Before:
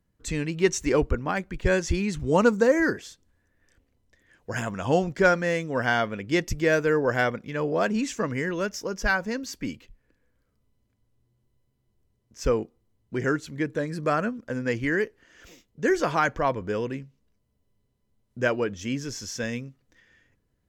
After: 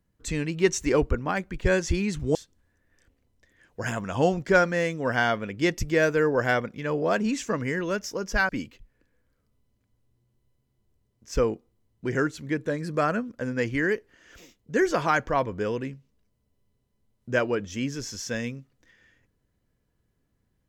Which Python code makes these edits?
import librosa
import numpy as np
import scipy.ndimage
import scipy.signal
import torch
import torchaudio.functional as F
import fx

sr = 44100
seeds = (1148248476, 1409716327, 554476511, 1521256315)

y = fx.edit(x, sr, fx.cut(start_s=2.35, length_s=0.7),
    fx.cut(start_s=9.19, length_s=0.39), tone=tone)